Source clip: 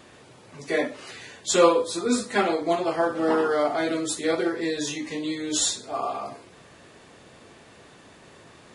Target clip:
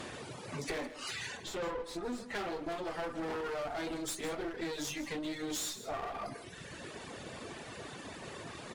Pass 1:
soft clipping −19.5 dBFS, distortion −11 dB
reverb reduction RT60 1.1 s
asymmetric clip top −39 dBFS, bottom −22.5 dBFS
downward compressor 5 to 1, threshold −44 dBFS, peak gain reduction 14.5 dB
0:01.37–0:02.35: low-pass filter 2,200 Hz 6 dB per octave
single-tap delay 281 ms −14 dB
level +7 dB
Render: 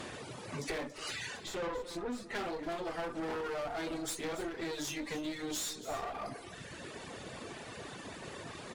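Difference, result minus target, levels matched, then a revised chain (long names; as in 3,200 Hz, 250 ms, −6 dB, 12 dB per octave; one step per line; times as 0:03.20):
echo 121 ms late
soft clipping −19.5 dBFS, distortion −11 dB
reverb reduction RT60 1.1 s
asymmetric clip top −39 dBFS, bottom −22.5 dBFS
downward compressor 5 to 1, threshold −44 dBFS, peak gain reduction 14.5 dB
0:01.37–0:02.35: low-pass filter 2,200 Hz 6 dB per octave
single-tap delay 160 ms −14 dB
level +7 dB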